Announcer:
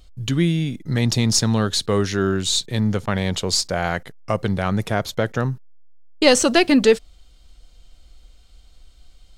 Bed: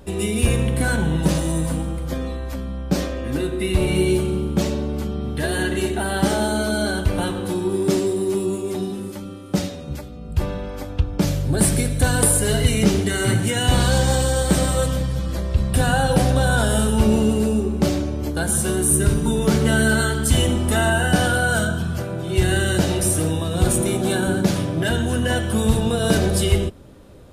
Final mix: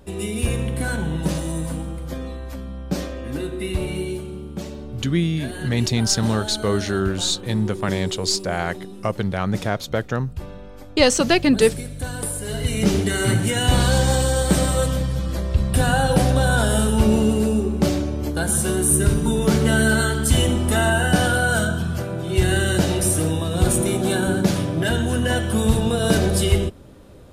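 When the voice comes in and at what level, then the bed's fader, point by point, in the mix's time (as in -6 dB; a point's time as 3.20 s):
4.75 s, -1.5 dB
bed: 3.67 s -4 dB
4.22 s -10.5 dB
12.38 s -10.5 dB
12.96 s 0 dB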